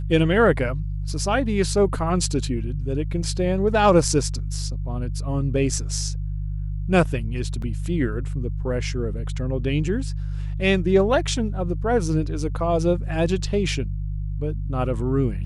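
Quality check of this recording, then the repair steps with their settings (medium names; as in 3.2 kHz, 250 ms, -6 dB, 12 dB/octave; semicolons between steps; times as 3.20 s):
hum 50 Hz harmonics 3 -27 dBFS
7.62 s: dropout 3.6 ms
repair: de-hum 50 Hz, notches 3; interpolate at 7.62 s, 3.6 ms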